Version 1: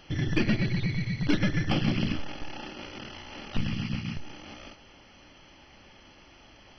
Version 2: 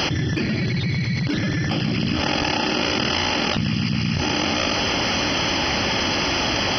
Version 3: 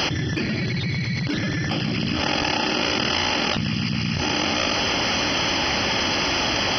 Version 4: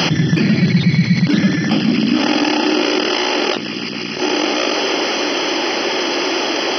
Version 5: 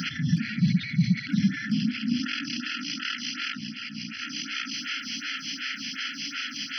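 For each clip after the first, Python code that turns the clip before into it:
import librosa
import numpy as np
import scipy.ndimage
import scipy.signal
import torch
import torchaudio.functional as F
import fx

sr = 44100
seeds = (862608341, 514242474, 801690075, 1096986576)

y1 = scipy.signal.sosfilt(scipy.signal.butter(2, 79.0, 'highpass', fs=sr, output='sos'), x)
y1 = fx.peak_eq(y1, sr, hz=5000.0, db=9.0, octaves=0.23)
y1 = fx.env_flatten(y1, sr, amount_pct=100)
y2 = fx.low_shelf(y1, sr, hz=410.0, db=-3.0)
y3 = fx.rider(y2, sr, range_db=10, speed_s=2.0)
y3 = fx.filter_sweep_highpass(y3, sr, from_hz=170.0, to_hz=360.0, start_s=1.0, end_s=3.11, q=3.2)
y3 = y3 * 10.0 ** (3.5 / 20.0)
y4 = fx.brickwall_bandstop(y3, sr, low_hz=280.0, high_hz=1300.0)
y4 = fx.echo_feedback(y4, sr, ms=553, feedback_pct=53, wet_db=-22.5)
y4 = fx.stagger_phaser(y4, sr, hz=2.7)
y4 = y4 * 10.0 ** (-7.5 / 20.0)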